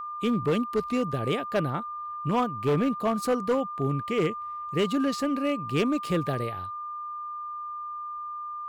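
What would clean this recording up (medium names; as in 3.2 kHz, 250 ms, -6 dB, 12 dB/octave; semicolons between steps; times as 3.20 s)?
clip repair -19 dBFS; band-stop 1.2 kHz, Q 30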